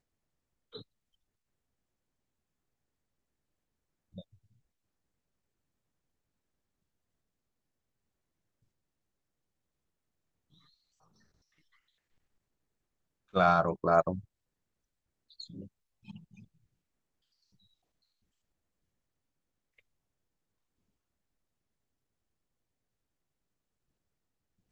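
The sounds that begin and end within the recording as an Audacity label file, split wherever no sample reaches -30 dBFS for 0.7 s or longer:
13.350000	14.150000	sound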